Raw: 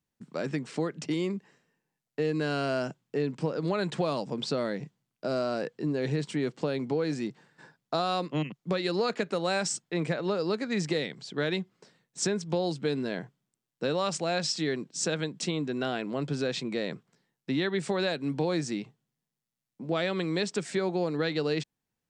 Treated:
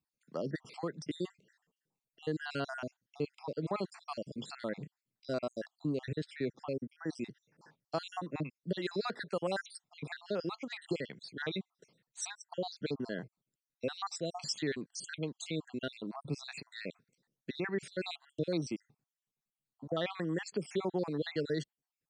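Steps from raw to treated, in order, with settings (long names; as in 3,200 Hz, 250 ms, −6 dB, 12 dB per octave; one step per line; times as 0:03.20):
time-frequency cells dropped at random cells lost 61%
0:06.05–0:06.88: high-frequency loss of the air 63 metres
level −4 dB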